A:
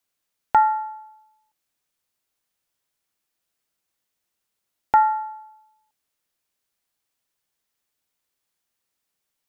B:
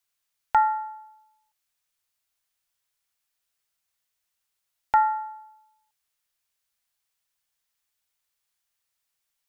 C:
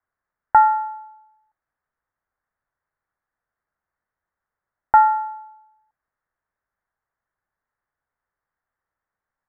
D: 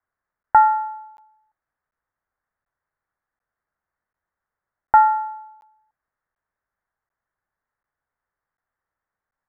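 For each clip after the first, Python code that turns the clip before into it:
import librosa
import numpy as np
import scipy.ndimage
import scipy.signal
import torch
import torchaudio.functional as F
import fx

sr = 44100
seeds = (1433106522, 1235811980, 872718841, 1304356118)

y1 = fx.peak_eq(x, sr, hz=280.0, db=-12.5, octaves=2.2)
y2 = scipy.signal.sosfilt(scipy.signal.butter(8, 1800.0, 'lowpass', fs=sr, output='sos'), y1)
y2 = y2 * 10.0 ** (7.0 / 20.0)
y3 = fx.buffer_crackle(y2, sr, first_s=0.43, period_s=0.74, block=512, kind='zero')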